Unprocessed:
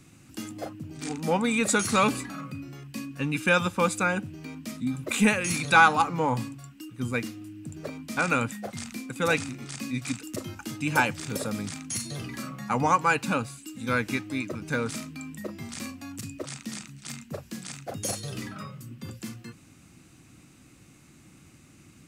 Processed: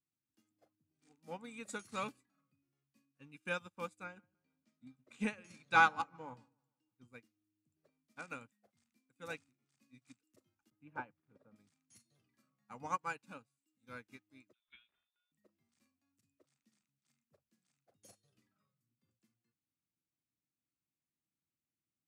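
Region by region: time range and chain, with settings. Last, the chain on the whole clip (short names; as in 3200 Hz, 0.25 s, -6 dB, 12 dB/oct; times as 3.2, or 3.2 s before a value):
4.04–7.08 LPF 7000 Hz + dark delay 0.152 s, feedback 50%, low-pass 1800 Hz, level -13.5 dB
10.7–11.56 LPF 1500 Hz + gate with hold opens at -31 dBFS, closes at -36 dBFS
14.53–15.32 HPF 740 Hz 6 dB/oct + inverted band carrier 3800 Hz
whole clip: low shelf 130 Hz -3.5 dB; upward expander 2.5:1, over -38 dBFS; gain -8.5 dB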